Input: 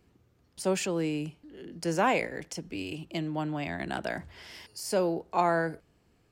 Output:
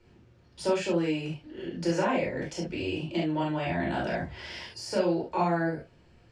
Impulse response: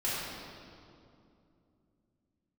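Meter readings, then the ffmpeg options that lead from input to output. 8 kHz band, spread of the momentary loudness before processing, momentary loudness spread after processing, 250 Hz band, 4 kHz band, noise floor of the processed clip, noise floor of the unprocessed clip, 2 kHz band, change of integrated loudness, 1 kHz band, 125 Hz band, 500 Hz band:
-5.0 dB, 16 LU, 11 LU, +3.0 dB, +1.5 dB, -59 dBFS, -67 dBFS, -0.5 dB, +1.0 dB, -1.0 dB, +3.5 dB, +1.5 dB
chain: -filter_complex "[0:a]lowpass=5.5k,acrossover=split=310|1200[a][b][c];[a]acompressor=threshold=-39dB:ratio=4[d];[b]acompressor=threshold=-36dB:ratio=4[e];[c]acompressor=threshold=-45dB:ratio=4[f];[d][e][f]amix=inputs=3:normalize=0[g];[1:a]atrim=start_sample=2205,atrim=end_sample=3528[h];[g][h]afir=irnorm=-1:irlink=0,volume=3.5dB"

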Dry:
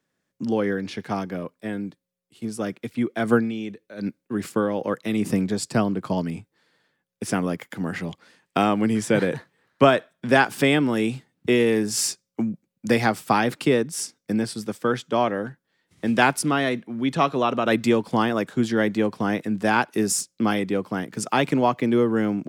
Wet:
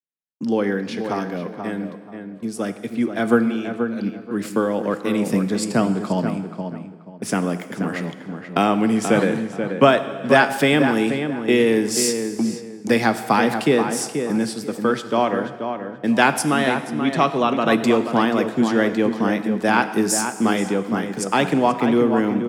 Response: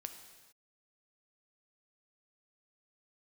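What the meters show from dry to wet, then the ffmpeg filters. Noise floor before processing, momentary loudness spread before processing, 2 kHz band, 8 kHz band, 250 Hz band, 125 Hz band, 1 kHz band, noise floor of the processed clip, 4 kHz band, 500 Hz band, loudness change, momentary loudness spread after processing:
-79 dBFS, 12 LU, +3.0 dB, +2.5 dB, +3.5 dB, +1.0 dB, +3.5 dB, -39 dBFS, +3.0 dB, +3.5 dB, +3.0 dB, 11 LU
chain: -filter_complex "[0:a]highpass=f=130:w=0.5412,highpass=f=130:w=1.3066,agate=range=-33dB:threshold=-39dB:ratio=3:detection=peak,asplit=2[a][b];[b]adelay=482,lowpass=f=2.1k:p=1,volume=-7dB,asplit=2[c][d];[d]adelay=482,lowpass=f=2.1k:p=1,volume=0.26,asplit=2[e][f];[f]adelay=482,lowpass=f=2.1k:p=1,volume=0.26[g];[a][c][e][g]amix=inputs=4:normalize=0,asplit=2[h][i];[1:a]atrim=start_sample=2205[j];[i][j]afir=irnorm=-1:irlink=0,volume=7.5dB[k];[h][k]amix=inputs=2:normalize=0,volume=-5.5dB"

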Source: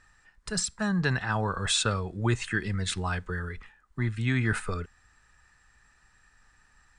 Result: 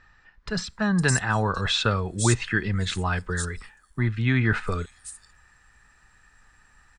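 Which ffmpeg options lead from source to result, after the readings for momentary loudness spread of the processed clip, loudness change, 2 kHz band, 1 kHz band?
12 LU, +4.0 dB, +4.5 dB, +4.5 dB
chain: -filter_complex "[0:a]acrossover=split=5300[a][b];[b]adelay=510[c];[a][c]amix=inputs=2:normalize=0,volume=4.5dB"

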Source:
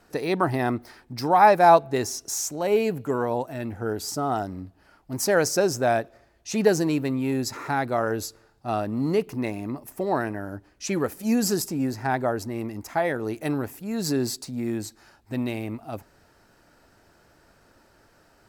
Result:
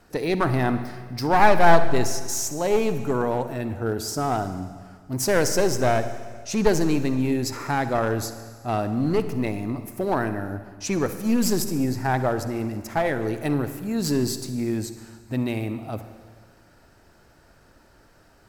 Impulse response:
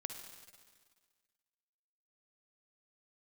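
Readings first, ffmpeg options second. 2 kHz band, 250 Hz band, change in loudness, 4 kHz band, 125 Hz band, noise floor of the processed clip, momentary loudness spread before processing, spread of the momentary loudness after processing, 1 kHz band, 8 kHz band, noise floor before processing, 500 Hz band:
+2.0 dB, +2.0 dB, +0.5 dB, +1.5 dB, +4.5 dB, -55 dBFS, 13 LU, 11 LU, -1.0 dB, +1.0 dB, -60 dBFS, +0.5 dB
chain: -filter_complex "[0:a]aeval=exprs='clip(val(0),-1,0.075)':c=same,asplit=2[a][b];[1:a]atrim=start_sample=2205,lowshelf=f=150:g=9.5[c];[b][c]afir=irnorm=-1:irlink=0,volume=3.5dB[d];[a][d]amix=inputs=2:normalize=0,volume=-5dB"

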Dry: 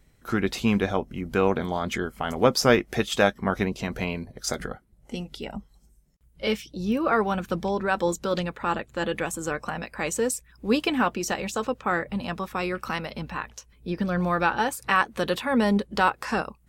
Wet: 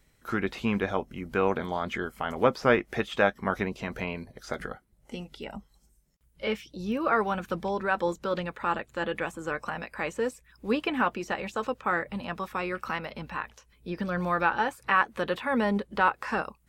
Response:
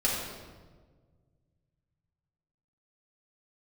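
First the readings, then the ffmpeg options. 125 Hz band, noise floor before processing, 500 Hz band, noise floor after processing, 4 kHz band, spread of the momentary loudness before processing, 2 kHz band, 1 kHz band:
-6.0 dB, -59 dBFS, -3.0 dB, -65 dBFS, -7.5 dB, 11 LU, -1.5 dB, -1.5 dB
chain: -filter_complex "[0:a]acrossover=split=2800[a][b];[b]acompressor=threshold=-50dB:ratio=4:attack=1:release=60[c];[a][c]amix=inputs=2:normalize=0,lowshelf=f=480:g=-6.5,bandreject=f=730:w=22"

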